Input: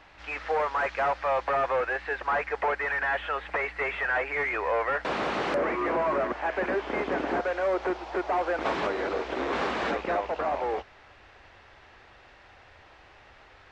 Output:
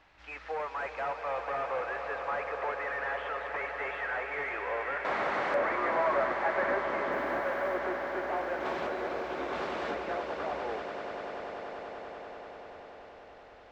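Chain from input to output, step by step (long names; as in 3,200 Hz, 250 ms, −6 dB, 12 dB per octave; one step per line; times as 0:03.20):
0:04.97–0:06.81: gain on a spectral selection 500–2,300 Hz +7 dB
0:07.11–0:07.77: background noise blue −62 dBFS
echo that builds up and dies away 97 ms, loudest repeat 8, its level −13 dB
level −8.5 dB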